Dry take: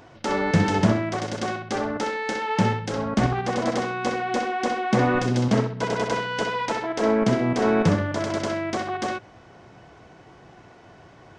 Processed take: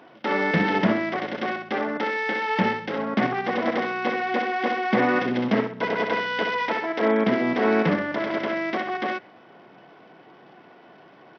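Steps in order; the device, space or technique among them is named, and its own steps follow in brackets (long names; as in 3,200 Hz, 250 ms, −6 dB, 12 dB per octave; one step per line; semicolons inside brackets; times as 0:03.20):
low-pass filter 7,300 Hz 12 dB per octave
dynamic equaliser 2,000 Hz, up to +7 dB, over −48 dBFS, Q 3
Bluetooth headset (high-pass filter 180 Hz 24 dB per octave; downsampling to 8,000 Hz; SBC 64 kbit/s 44,100 Hz)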